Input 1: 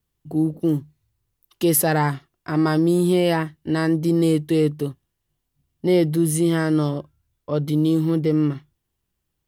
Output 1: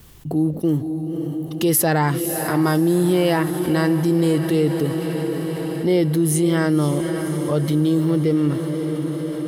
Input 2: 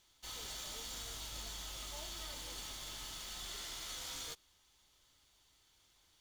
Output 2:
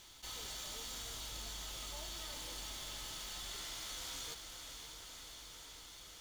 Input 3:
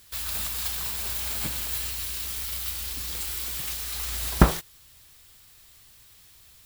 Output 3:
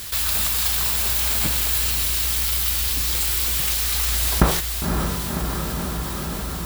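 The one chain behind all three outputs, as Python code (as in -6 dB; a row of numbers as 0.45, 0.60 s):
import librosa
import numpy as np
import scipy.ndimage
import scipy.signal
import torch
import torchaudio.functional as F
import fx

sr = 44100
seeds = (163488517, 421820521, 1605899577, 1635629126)

p1 = x + fx.echo_diffused(x, sr, ms=548, feedback_pct=66, wet_db=-12, dry=0)
p2 = fx.env_flatten(p1, sr, amount_pct=50)
y = p2 * librosa.db_to_amplitude(-1.0)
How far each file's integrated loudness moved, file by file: +1.0, -0.5, +7.5 LU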